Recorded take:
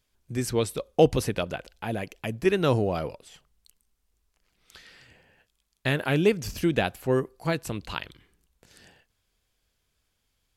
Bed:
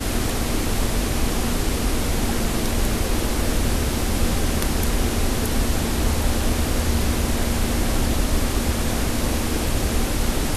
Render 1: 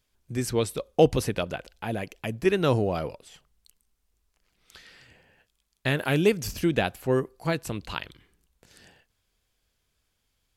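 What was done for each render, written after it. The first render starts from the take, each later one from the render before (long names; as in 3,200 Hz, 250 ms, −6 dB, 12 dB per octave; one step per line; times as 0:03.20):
0:05.97–0:06.53: high-shelf EQ 6,300 Hz +6.5 dB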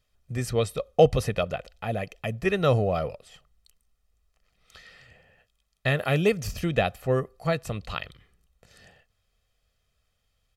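high-shelf EQ 5,500 Hz −7 dB
comb filter 1.6 ms, depth 60%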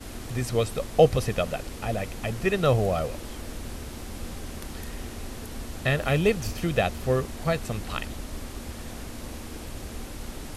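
mix in bed −15.5 dB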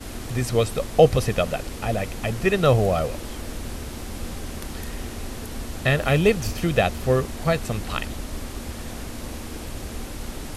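level +4 dB
brickwall limiter −3 dBFS, peak gain reduction 1.5 dB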